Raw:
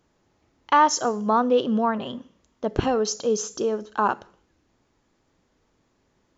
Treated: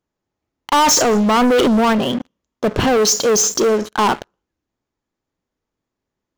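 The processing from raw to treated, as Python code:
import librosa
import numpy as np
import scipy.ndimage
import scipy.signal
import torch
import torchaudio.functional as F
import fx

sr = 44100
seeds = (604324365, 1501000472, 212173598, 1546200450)

y = fx.transient(x, sr, attack_db=-3, sustain_db=10, at=(0.78, 1.93))
y = fx.high_shelf(y, sr, hz=3500.0, db=7.0, at=(3.01, 3.89))
y = fx.leveller(y, sr, passes=5)
y = F.gain(torch.from_numpy(y), -4.0).numpy()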